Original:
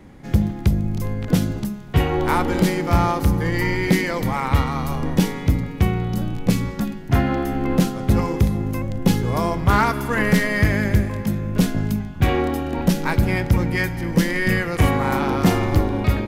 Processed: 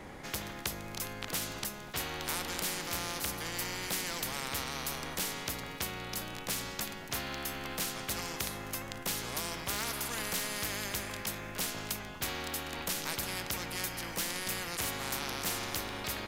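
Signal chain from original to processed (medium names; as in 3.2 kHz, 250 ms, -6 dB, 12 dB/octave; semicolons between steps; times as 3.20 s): spectrum-flattening compressor 4:1; trim -5 dB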